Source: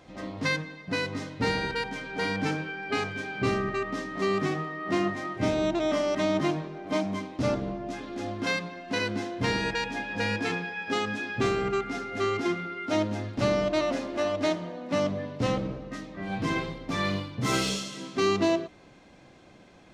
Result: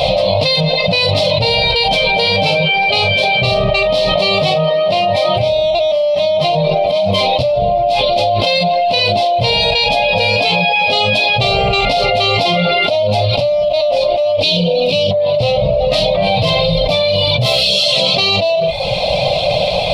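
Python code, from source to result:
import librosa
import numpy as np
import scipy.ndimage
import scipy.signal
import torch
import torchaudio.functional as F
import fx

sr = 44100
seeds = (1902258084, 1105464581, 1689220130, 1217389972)

p1 = fx.spec_box(x, sr, start_s=14.42, length_s=0.69, low_hz=530.0, high_hz=2300.0, gain_db=-15)
p2 = fx.dereverb_blind(p1, sr, rt60_s=0.55)
p3 = fx.curve_eq(p2, sr, hz=(160.0, 240.0, 340.0, 590.0, 1700.0, 2400.0, 4200.0, 6500.0, 9900.0), db=(0, -18, -22, 14, -24, 5, 12, -11, -1))
p4 = p3 + fx.room_early_taps(p3, sr, ms=(17, 43), db=(-10.5, -10.5), dry=0)
p5 = fx.env_flatten(p4, sr, amount_pct=100)
y = p5 * librosa.db_to_amplitude(-3.5)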